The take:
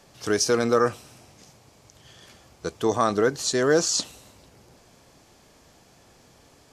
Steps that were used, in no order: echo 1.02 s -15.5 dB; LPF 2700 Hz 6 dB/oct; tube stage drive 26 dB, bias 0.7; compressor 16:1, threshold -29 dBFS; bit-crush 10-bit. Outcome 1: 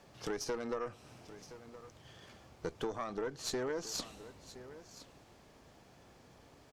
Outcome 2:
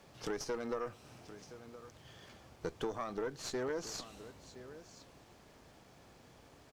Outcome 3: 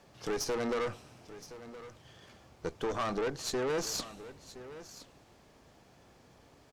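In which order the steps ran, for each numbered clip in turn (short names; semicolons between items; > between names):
bit-crush > LPF > compressor > tube stage > echo; compressor > echo > tube stage > bit-crush > LPF; bit-crush > LPF > tube stage > compressor > echo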